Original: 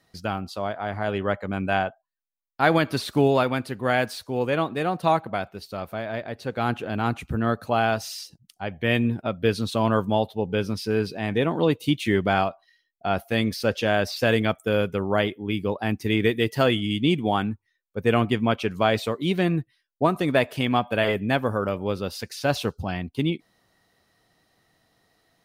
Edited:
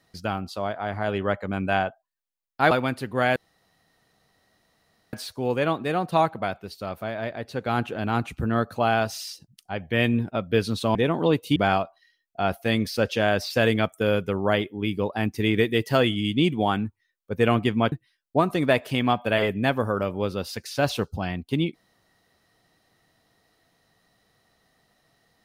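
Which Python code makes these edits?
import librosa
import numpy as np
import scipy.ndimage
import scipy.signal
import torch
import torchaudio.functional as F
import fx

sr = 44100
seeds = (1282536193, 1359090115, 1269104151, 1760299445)

y = fx.edit(x, sr, fx.cut(start_s=2.71, length_s=0.68),
    fx.insert_room_tone(at_s=4.04, length_s=1.77),
    fx.cut(start_s=9.86, length_s=1.46),
    fx.cut(start_s=11.93, length_s=0.29),
    fx.cut(start_s=18.58, length_s=1.0), tone=tone)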